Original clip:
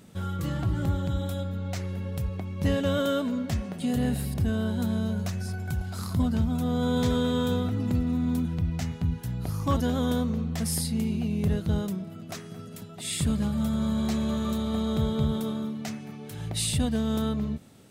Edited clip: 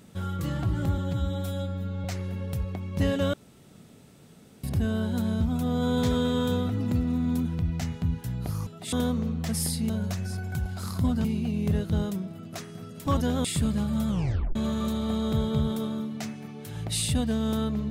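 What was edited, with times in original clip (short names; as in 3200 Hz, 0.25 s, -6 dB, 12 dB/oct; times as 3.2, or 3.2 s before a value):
0.98–1.69 stretch 1.5×
2.98–4.28 room tone
5.05–6.4 move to 11.01
9.66–10.04 swap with 12.83–13.09
13.73 tape stop 0.47 s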